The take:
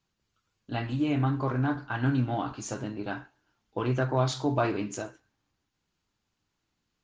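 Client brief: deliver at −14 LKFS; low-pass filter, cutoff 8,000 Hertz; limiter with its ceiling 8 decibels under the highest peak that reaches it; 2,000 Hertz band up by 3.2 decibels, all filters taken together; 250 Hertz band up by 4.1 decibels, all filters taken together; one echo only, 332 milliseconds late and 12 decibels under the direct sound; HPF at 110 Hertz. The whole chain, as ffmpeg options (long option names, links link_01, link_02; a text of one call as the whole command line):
ffmpeg -i in.wav -af "highpass=110,lowpass=8000,equalizer=frequency=250:width_type=o:gain=5,equalizer=frequency=2000:width_type=o:gain=4.5,alimiter=limit=-18.5dB:level=0:latency=1,aecho=1:1:332:0.251,volume=16dB" out.wav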